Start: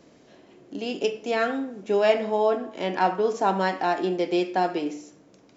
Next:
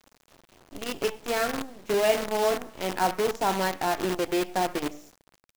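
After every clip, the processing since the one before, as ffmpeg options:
-af "acrusher=bits=5:dc=4:mix=0:aa=0.000001,volume=-3dB"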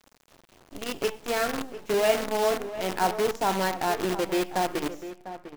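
-filter_complex "[0:a]asplit=2[a][b];[b]adelay=699.7,volume=-12dB,highshelf=f=4k:g=-15.7[c];[a][c]amix=inputs=2:normalize=0"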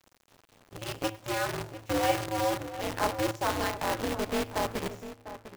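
-af "aeval=exprs='val(0)*sgn(sin(2*PI*110*n/s))':c=same,volume=-4dB"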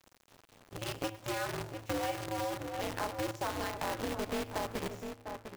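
-af "acompressor=threshold=-32dB:ratio=6"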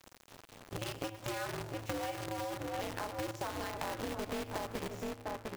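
-af "acompressor=threshold=-42dB:ratio=5,volume=6dB"

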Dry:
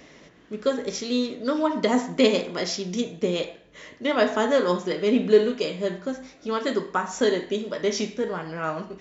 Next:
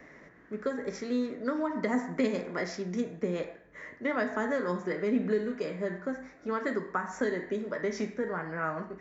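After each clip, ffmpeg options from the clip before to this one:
-filter_complex "[0:a]acrossover=split=250|3000[a][b][c];[b]acompressor=threshold=-26dB:ratio=6[d];[a][d][c]amix=inputs=3:normalize=0,highshelf=f=2.4k:t=q:w=3:g=-8.5,volume=-4dB"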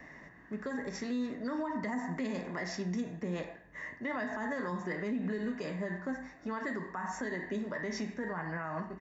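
-af "aecho=1:1:1.1:0.5,alimiter=level_in=3.5dB:limit=-24dB:level=0:latency=1:release=71,volume=-3.5dB"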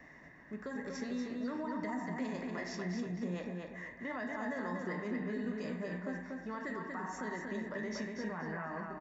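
-filter_complex "[0:a]asplit=2[a][b];[b]adelay=238,lowpass=f=4.4k:p=1,volume=-3dB,asplit=2[c][d];[d]adelay=238,lowpass=f=4.4k:p=1,volume=0.34,asplit=2[e][f];[f]adelay=238,lowpass=f=4.4k:p=1,volume=0.34,asplit=2[g][h];[h]adelay=238,lowpass=f=4.4k:p=1,volume=0.34[i];[a][c][e][g][i]amix=inputs=5:normalize=0,volume=-4.5dB"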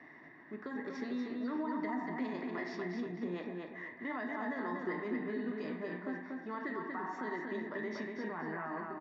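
-af "highpass=180,equalizer=f=190:t=q:w=4:g=-7,equalizer=f=340:t=q:w=4:g=5,equalizer=f=540:t=q:w=4:g=-8,equalizer=f=1.6k:t=q:w=4:g=-3,equalizer=f=2.7k:t=q:w=4:g=-5,lowpass=f=4.1k:w=0.5412,lowpass=f=4.1k:w=1.3066,volume=2.5dB"

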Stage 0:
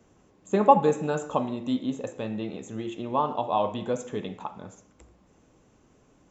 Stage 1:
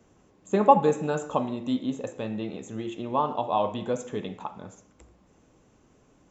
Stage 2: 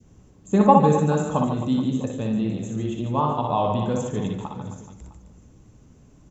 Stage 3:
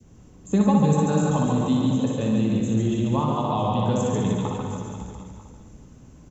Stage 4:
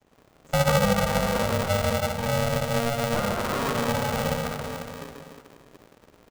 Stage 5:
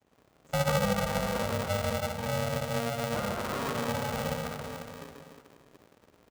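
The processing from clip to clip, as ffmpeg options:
-af anull
-filter_complex "[0:a]bass=f=250:g=15,treble=f=4k:g=6,asplit=2[a][b];[b]aecho=0:1:60|144|261.6|426.2|656.7:0.631|0.398|0.251|0.158|0.1[c];[a][c]amix=inputs=2:normalize=0,adynamicequalizer=threshold=0.0355:dfrequency=1100:dqfactor=0.93:tfrequency=1100:tqfactor=0.93:attack=5:release=100:ratio=0.375:range=2:mode=boostabove:tftype=bell,volume=-2.5dB"
-filter_complex "[0:a]acrossover=split=200|3000[a][b][c];[b]acompressor=threshold=-26dB:ratio=6[d];[a][d][c]amix=inputs=3:normalize=0,asplit=2[e][f];[f]aecho=0:1:140|301|486.2|699.1|943.9:0.631|0.398|0.251|0.158|0.1[g];[e][g]amix=inputs=2:normalize=0,volume=2dB"
-filter_complex "[0:a]lowpass=3.3k,acrossover=split=440|1600[a][b][c];[a]aeval=exprs='sgn(val(0))*max(abs(val(0))-0.00316,0)':c=same[d];[d][b][c]amix=inputs=3:normalize=0,aeval=exprs='val(0)*sgn(sin(2*PI*350*n/s))':c=same,volume=-3dB"
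-af "highpass=43,volume=-6dB"

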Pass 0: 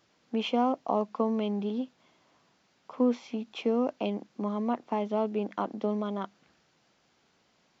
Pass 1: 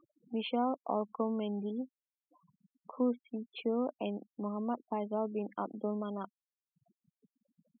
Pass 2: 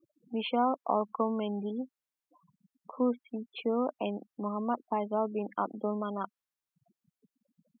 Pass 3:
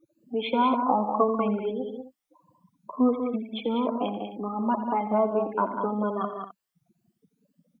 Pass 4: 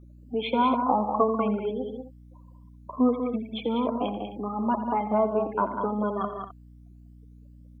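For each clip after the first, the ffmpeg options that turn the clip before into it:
-af "acompressor=mode=upward:threshold=-36dB:ratio=2.5,afftfilt=real='re*gte(hypot(re,im),0.0141)':imag='im*gte(hypot(re,im),0.0141)':win_size=1024:overlap=0.75,volume=-5.5dB"
-af "adynamicequalizer=threshold=0.00355:dfrequency=1300:dqfactor=0.79:tfrequency=1300:tqfactor=0.79:attack=5:release=100:ratio=0.375:range=3.5:mode=boostabove:tftype=bell,volume=1.5dB"
-filter_complex "[0:a]afftfilt=real='re*pow(10,17/40*sin(2*PI*(1.4*log(max(b,1)*sr/1024/100)/log(2)-(2.2)*(pts-256)/sr)))':imag='im*pow(10,17/40*sin(2*PI*(1.4*log(max(b,1)*sr/1024/100)/log(2)-(2.2)*(pts-256)/sr)))':win_size=1024:overlap=0.75,asplit=2[a][b];[b]aecho=0:1:86|148|194|260:0.266|0.2|0.473|0.168[c];[a][c]amix=inputs=2:normalize=0,volume=2dB"
-af "aeval=exprs='val(0)+0.00398*(sin(2*PI*60*n/s)+sin(2*PI*2*60*n/s)/2+sin(2*PI*3*60*n/s)/3+sin(2*PI*4*60*n/s)/4+sin(2*PI*5*60*n/s)/5)':c=same"

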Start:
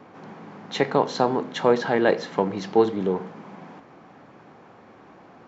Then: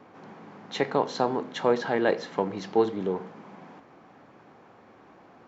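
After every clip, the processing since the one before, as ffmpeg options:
-af "equalizer=f=160:t=o:w=0.77:g=-2.5,volume=-4dB"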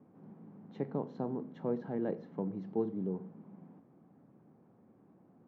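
-af "bandpass=f=170:t=q:w=1.4:csg=0,volume=-1.5dB"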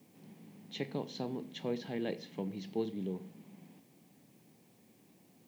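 -af "aexciter=amount=11.3:drive=7.3:freq=2.1k,volume=-2dB"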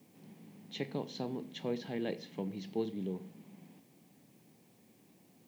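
-af anull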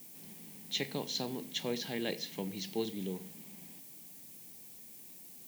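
-af "crystalizer=i=6.5:c=0,volume=-1dB"

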